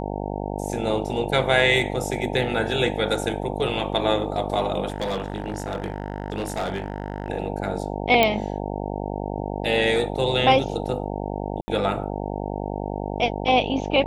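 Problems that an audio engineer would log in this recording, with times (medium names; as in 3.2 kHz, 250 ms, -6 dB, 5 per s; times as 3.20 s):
buzz 50 Hz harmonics 18 -29 dBFS
4.88–7.30 s: clipped -22 dBFS
8.23 s: pop -5 dBFS
11.61–11.68 s: dropout 70 ms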